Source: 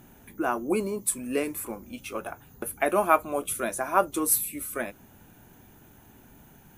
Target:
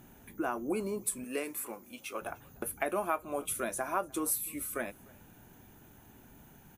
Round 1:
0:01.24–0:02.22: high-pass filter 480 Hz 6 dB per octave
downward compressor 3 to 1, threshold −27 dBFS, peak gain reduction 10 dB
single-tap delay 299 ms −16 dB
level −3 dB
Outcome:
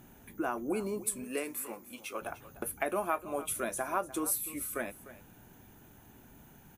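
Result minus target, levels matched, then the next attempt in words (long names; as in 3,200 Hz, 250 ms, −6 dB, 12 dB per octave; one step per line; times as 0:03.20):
echo-to-direct +9.5 dB
0:01.24–0:02.22: high-pass filter 480 Hz 6 dB per octave
downward compressor 3 to 1, threshold −27 dBFS, peak gain reduction 10 dB
single-tap delay 299 ms −25.5 dB
level −3 dB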